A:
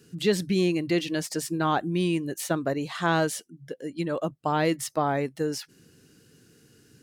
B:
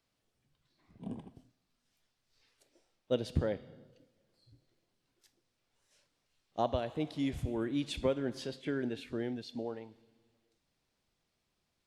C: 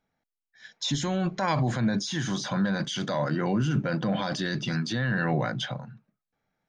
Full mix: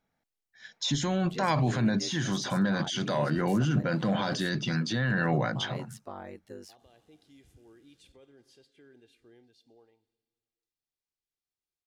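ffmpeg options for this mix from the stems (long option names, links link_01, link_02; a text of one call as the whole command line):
ffmpeg -i stem1.wav -i stem2.wav -i stem3.wav -filter_complex "[0:a]aeval=exprs='val(0)*sin(2*PI*48*n/s)':channel_layout=same,adelay=1100,volume=-14dB[link_01];[1:a]highshelf=frequency=3600:gain=10.5,aecho=1:1:2.5:0.43,alimiter=level_in=2dB:limit=-24dB:level=0:latency=1:release=18,volume=-2dB,volume=-14dB,asplit=2[link_02][link_03];[link_03]volume=-8.5dB[link_04];[2:a]volume=-0.5dB,asplit=2[link_05][link_06];[link_06]apad=whole_len=523297[link_07];[link_02][link_07]sidechaingate=range=-33dB:threshold=-44dB:ratio=16:detection=peak[link_08];[link_04]aecho=0:1:113:1[link_09];[link_01][link_08][link_05][link_09]amix=inputs=4:normalize=0" out.wav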